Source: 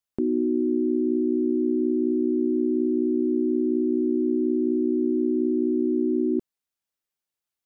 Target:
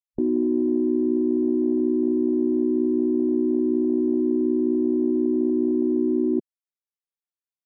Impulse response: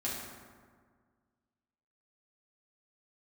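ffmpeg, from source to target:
-af "afwtdn=0.0398,volume=1.19"

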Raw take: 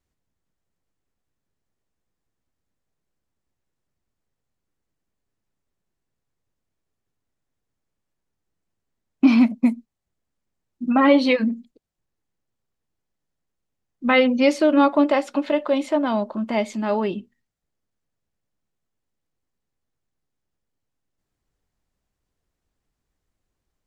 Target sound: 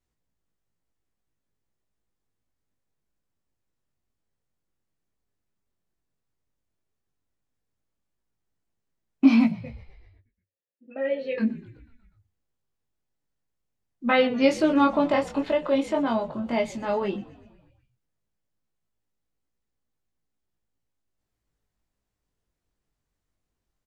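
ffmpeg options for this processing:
-filter_complex "[0:a]flanger=delay=18:depth=4.2:speed=0.1,asettb=1/sr,asplit=3[s0][s1][s2];[s0]atrim=end=9.554[s3];[s1]atrim=start=9.55:end=11.38,asetpts=PTS-STARTPTS,afade=t=in:d=0.004:c=qsin,afade=t=out:st=1.826:d=0.004:c=qsin,asplit=3[s4][s5][s6];[s4]bandpass=f=530:t=q:w=8,volume=1[s7];[s5]bandpass=f=1840:t=q:w=8,volume=0.501[s8];[s6]bandpass=f=2480:t=q:w=8,volume=0.355[s9];[s7][s8][s9]amix=inputs=3:normalize=0[s10];[s2]atrim=start=11.376[s11];[s3][s10]acrossfade=d=0.004:c1=hsin:c2=qsin[s12];[s12][s11]acrossfade=d=0.004:c1=qsin:c2=hsin,asplit=2[s13][s14];[s14]asplit=6[s15][s16][s17][s18][s19][s20];[s15]adelay=123,afreqshift=-54,volume=0.0944[s21];[s16]adelay=246,afreqshift=-108,volume=0.0603[s22];[s17]adelay=369,afreqshift=-162,volume=0.0385[s23];[s18]adelay=492,afreqshift=-216,volume=0.0248[s24];[s19]adelay=615,afreqshift=-270,volume=0.0158[s25];[s20]adelay=738,afreqshift=-324,volume=0.0101[s26];[s21][s22][s23][s24][s25][s26]amix=inputs=6:normalize=0[s27];[s13][s27]amix=inputs=2:normalize=0"

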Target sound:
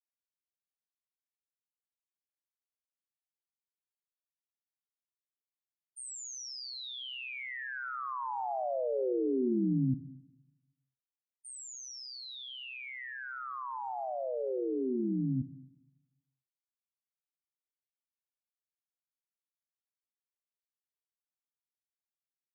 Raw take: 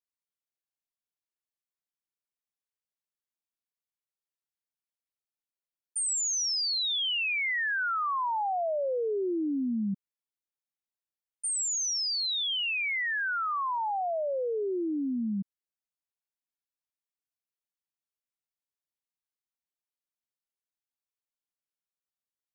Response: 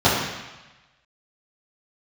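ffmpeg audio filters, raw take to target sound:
-filter_complex "[0:a]agate=range=0.0224:threshold=0.0631:ratio=3:detection=peak,tiltshelf=f=860:g=8,aeval=exprs='val(0)*sin(2*PI*64*n/s)':c=same,asplit=2[s0][s1];[1:a]atrim=start_sample=2205,adelay=56[s2];[s1][s2]afir=irnorm=-1:irlink=0,volume=0.00794[s3];[s0][s3]amix=inputs=2:normalize=0,volume=1.5"

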